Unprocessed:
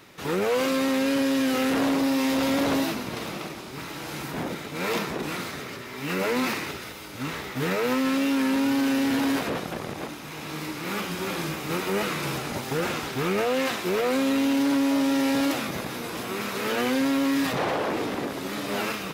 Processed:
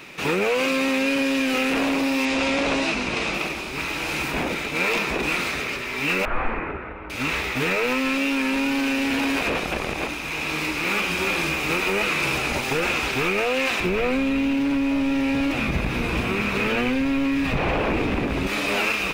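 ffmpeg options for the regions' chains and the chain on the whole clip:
-filter_complex "[0:a]asettb=1/sr,asplit=3[a][b][c];[a]atrim=end=2.254[d];[b]atrim=start=2.25:end=3.34,asetpts=PTS-STARTPTS,afade=t=in:d=0.004:c=qsin,afade=t=out:st=1.086:d=0.004:c=qsin,lowpass=f=8.6k:w=0.5412,lowpass=f=8.6k:w=1.3066,asplit=2[e][f];[f]adelay=20,volume=-12dB[g];[e][g]amix=inputs=2:normalize=0,atrim=end_sample=48069[h];[c]atrim=start=3.336[i];[d][h]acrossfade=d=0.004:c1=hsin:c2=qsin[j];[j][i]acrossfade=d=0.004:c1=qsin:c2=hsin,asettb=1/sr,asplit=3[k][l][m];[k]atrim=end=6.254[n];[l]atrim=start=6.25:end=7.1,asetpts=PTS-STARTPTS,afade=t=in:d=0.004:c=qsin,afade=t=out:st=0.846:d=0.004:c=qsin,aeval=exprs='(mod(14.1*val(0)+1,2)-1)/14.1':c=same,lowpass=f=1.6k:w=0.5412,lowpass=f=1.6k:w=1.3066[o];[m]atrim=start=7.096[p];[n][o]acrossfade=d=0.004:c1=hsin:c2=qsin[q];[q][p]acrossfade=d=0.004:c1=qsin:c2=hsin,asettb=1/sr,asplit=3[r][s][t];[r]atrim=end=13.804[u];[s]atrim=start=13.8:end=18.47,asetpts=PTS-STARTPTS,afade=t=in:d=0.004:c=qsin,afade=t=out:st=4.666:d=0.004:c=qsin,acrusher=bits=8:mode=log:mix=0:aa=0.000001,bass=f=250:g=14,treble=f=4k:g=-7[v];[t]atrim=start=18.466[w];[u][v]acrossfade=d=0.004:c1=hsin:c2=qsin[x];[x][w]acrossfade=d=0.004:c1=qsin:c2=hsin,equalizer=f=100:t=o:w=0.33:g=-9,equalizer=f=2.5k:t=o:w=0.33:g=12,equalizer=f=12.5k:t=o:w=0.33:g=-8,acompressor=threshold=-25dB:ratio=6,asubboost=boost=8:cutoff=52,volume=6.5dB"

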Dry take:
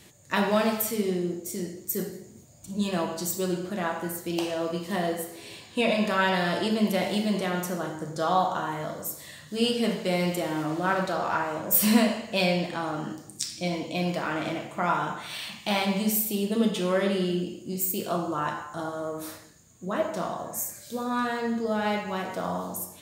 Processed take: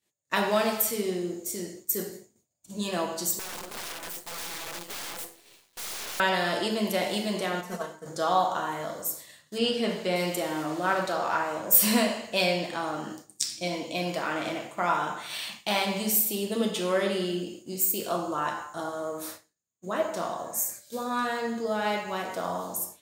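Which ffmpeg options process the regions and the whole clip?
-filter_complex "[0:a]asettb=1/sr,asplit=3[a][b][c];[a]atrim=end=3.394[d];[b]atrim=start=3.39:end=6.2,asetpts=PTS-STARTPTS,afade=t=in:d=0.004:c=qsin,afade=t=out:st=2.806:d=0.004:c=qsin,aeval=exprs='(mod(26.6*val(0)+1,2)-1)/26.6':c=same,acrusher=bits=5:dc=4:mix=0:aa=0.000001[e];[c]atrim=start=6.196[f];[d][e]acrossfade=d=0.004:c1=hsin:c2=qsin[g];[g][f]acrossfade=d=0.004:c1=qsin:c2=hsin,asettb=1/sr,asplit=3[h][i][j];[h]atrim=end=7.614[k];[i]atrim=start=7.61:end=8.06,asetpts=PTS-STARTPTS,afade=t=in:d=0.004:c=qsin,afade=t=out:st=0.446:d=0.004:c=qsin,acrossover=split=3900[l][m];[m]acompressor=threshold=-47dB:ratio=4:attack=1:release=60[n];[l][n]amix=inputs=2:normalize=0,agate=range=-7dB:threshold=-31dB:ratio=16:release=100:detection=peak,aecho=1:1:4.5:0.84,atrim=end_sample=19845[o];[j]atrim=start=8.056[p];[k][o]acrossfade=d=0.004:c1=hsin:c2=qsin[q];[q][p]acrossfade=d=0.004:c1=qsin:c2=hsin,asettb=1/sr,asplit=3[r][s][t];[r]atrim=end=9.584[u];[s]atrim=start=9.58:end=10.16,asetpts=PTS-STARTPTS,afade=t=in:d=0.004:c=qsin,afade=t=out:st=0.576:d=0.004:c=qsin,acrossover=split=6800[v][w];[w]acompressor=threshold=-53dB:ratio=4:attack=1:release=60[x];[v][x]amix=inputs=2:normalize=0,bass=f=250:g=2,treble=f=4k:g=-3[y];[t]atrim=start=10.156[z];[u][y]acrossfade=d=0.004:c1=hsin:c2=qsin[aa];[aa][z]acrossfade=d=0.004:c1=qsin:c2=hsin,agate=range=-33dB:threshold=-37dB:ratio=3:detection=peak,bass=f=250:g=-8,treble=f=4k:g=3"

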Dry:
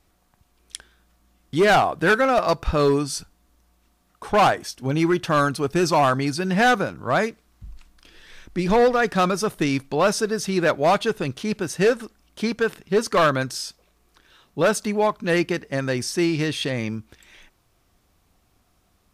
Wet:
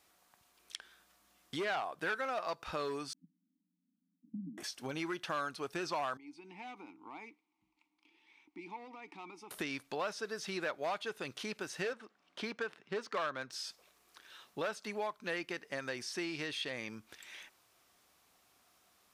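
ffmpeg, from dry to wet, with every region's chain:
-filter_complex "[0:a]asettb=1/sr,asplit=3[a][b][c];[a]atrim=end=3.134[d];[b]atrim=start=3.13:end=4.58,asetpts=PTS-STARTPTS,afade=t=in:d=0.004:c=qsin,afade=t=out:st=1.446:d=0.004:c=qsin,asuperpass=centerf=220:order=20:qfactor=1.5,aecho=1:1:4.3:0.5,atrim=end_sample=63945[e];[c]atrim=start=4.576[f];[d][e]acrossfade=d=0.004:c1=hsin:c2=qsin[g];[g][f]acrossfade=d=0.004:c1=qsin:c2=hsin,asettb=1/sr,asplit=3[h][i][j];[h]atrim=end=6.174[k];[i]atrim=start=6.17:end=9.51,asetpts=PTS-STARTPTS,afade=t=in:d=0.004:c=qsin,afade=t=out:st=3.336:d=0.004:c=qsin,equalizer=f=8.9k:w=0.59:g=4.5,acompressor=threshold=-24dB:ratio=4:attack=3.2:release=140:knee=1:detection=peak,asplit=3[l][m][n];[l]bandpass=f=300:t=q:w=8,volume=0dB[o];[m]bandpass=f=870:t=q:w=8,volume=-6dB[p];[n]bandpass=f=2.24k:t=q:w=8,volume=-9dB[q];[o][p][q]amix=inputs=3:normalize=0[r];[j]atrim=start=9.506[s];[k][r]acrossfade=d=0.004:c1=hsin:c2=qsin[t];[t][s]acrossfade=d=0.004:c1=qsin:c2=hsin,asettb=1/sr,asplit=3[u][v][w];[u]atrim=end=11.934[x];[v]atrim=start=11.93:end=13.53,asetpts=PTS-STARTPTS,afade=t=in:d=0.004:c=qsin,afade=t=out:st=1.596:d=0.004:c=qsin,highpass=f=92:w=0.5412,highpass=f=92:w=1.3066,adynamicsmooth=sensitivity=2:basefreq=3.5k[y];[w]atrim=start=13.526[z];[x][y]acrossfade=d=0.004:c1=hsin:c2=qsin[aa];[aa][z]acrossfade=d=0.004:c1=qsin:c2=hsin,acrossover=split=4800[ab][ac];[ac]acompressor=threshold=-44dB:ratio=4:attack=1:release=60[ad];[ab][ad]amix=inputs=2:normalize=0,highpass=f=850:p=1,acompressor=threshold=-41dB:ratio=2.5"

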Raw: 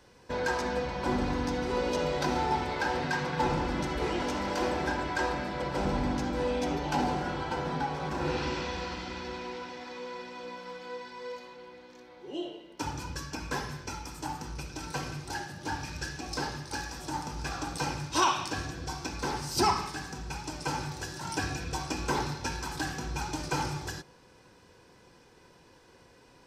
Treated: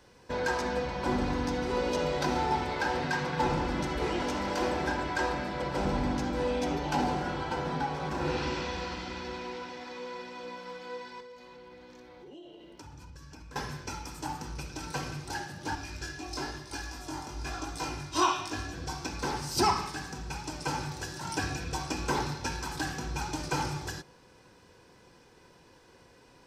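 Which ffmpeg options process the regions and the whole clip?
-filter_complex "[0:a]asettb=1/sr,asplit=3[a][b][c];[a]atrim=end=11.204[d];[b]atrim=start=11.2:end=13.56,asetpts=PTS-STARTPTS,afade=t=in:d=0.004:c=qsin,afade=t=out:st=2.356:d=0.004:c=qsin,lowshelf=f=140:g=10,acompressor=threshold=-46dB:ratio=6:attack=3.2:release=140:knee=1:detection=peak[e];[c]atrim=start=13.556[f];[d][e]acrossfade=d=0.004:c1=hsin:c2=qsin[g];[g][f]acrossfade=d=0.004:c1=qsin:c2=hsin,asettb=1/sr,asplit=3[h][i][j];[h]atrim=end=15.754[k];[i]atrim=start=15.75:end=18.73,asetpts=PTS-STARTPTS,afade=t=in:d=0.004:c=qsin,afade=t=out:st=2.976:d=0.004:c=qsin,aecho=1:1:2.9:0.49,atrim=end_sample=131418,flanger=delay=18:depth=4.2:speed=1[l];[j]atrim=start=18.726[m];[k][l]acrossfade=d=0.004:c1=hsin:c2=qsin[n];[n][m]acrossfade=d=0.004:c1=qsin:c2=hsin"

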